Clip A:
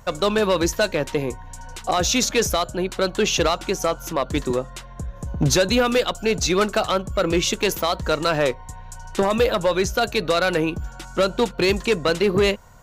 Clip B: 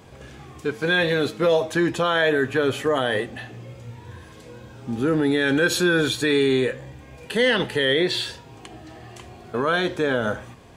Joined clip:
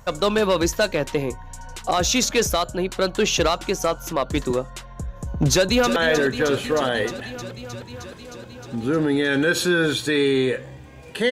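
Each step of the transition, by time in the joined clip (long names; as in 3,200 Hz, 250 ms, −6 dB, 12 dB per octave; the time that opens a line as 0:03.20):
clip A
0:05.52–0:05.96: delay throw 310 ms, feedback 80%, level −9.5 dB
0:05.96: continue with clip B from 0:02.11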